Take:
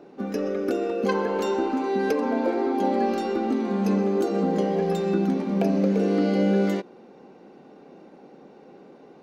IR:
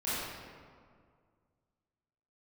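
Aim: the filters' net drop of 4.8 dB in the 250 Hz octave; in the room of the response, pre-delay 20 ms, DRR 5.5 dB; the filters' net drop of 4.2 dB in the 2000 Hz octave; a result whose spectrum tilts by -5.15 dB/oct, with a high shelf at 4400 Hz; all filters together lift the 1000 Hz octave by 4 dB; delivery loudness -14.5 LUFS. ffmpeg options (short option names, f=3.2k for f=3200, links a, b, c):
-filter_complex "[0:a]equalizer=f=250:t=o:g=-7,equalizer=f=1k:t=o:g=8,equalizer=f=2k:t=o:g=-8.5,highshelf=f=4.4k:g=-8.5,asplit=2[a][b];[1:a]atrim=start_sample=2205,adelay=20[c];[b][c]afir=irnorm=-1:irlink=0,volume=-13dB[d];[a][d]amix=inputs=2:normalize=0,volume=10dB"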